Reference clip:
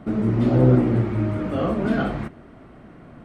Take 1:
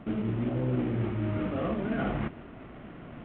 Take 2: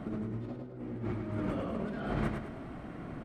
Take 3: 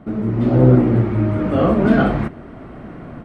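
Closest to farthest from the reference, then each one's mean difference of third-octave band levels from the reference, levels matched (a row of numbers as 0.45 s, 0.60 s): 3, 1, 2; 2.5 dB, 5.0 dB, 8.0 dB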